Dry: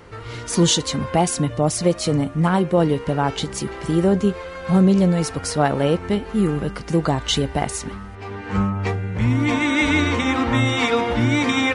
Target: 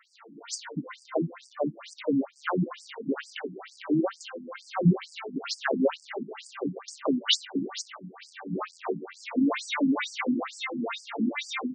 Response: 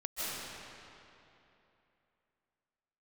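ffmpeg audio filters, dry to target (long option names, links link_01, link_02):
-filter_complex "[0:a]asplit=3[link_01][link_02][link_03];[link_02]asetrate=22050,aresample=44100,atempo=2,volume=-9dB[link_04];[link_03]asetrate=88200,aresample=44100,atempo=0.5,volume=-17dB[link_05];[link_01][link_04][link_05]amix=inputs=3:normalize=0,dynaudnorm=framelen=340:gausssize=13:maxgain=13.5dB,afreqshift=-16,asplit=2[link_06][link_07];[link_07]acrusher=bits=5:dc=4:mix=0:aa=0.000001,volume=-9dB[link_08];[link_06][link_08]amix=inputs=2:normalize=0,afftfilt=real='re*between(b*sr/1024,220*pow(6600/220,0.5+0.5*sin(2*PI*2.2*pts/sr))/1.41,220*pow(6600/220,0.5+0.5*sin(2*PI*2.2*pts/sr))*1.41)':imag='im*between(b*sr/1024,220*pow(6600/220,0.5+0.5*sin(2*PI*2.2*pts/sr))/1.41,220*pow(6600/220,0.5+0.5*sin(2*PI*2.2*pts/sr))*1.41)':win_size=1024:overlap=0.75,volume=-7dB"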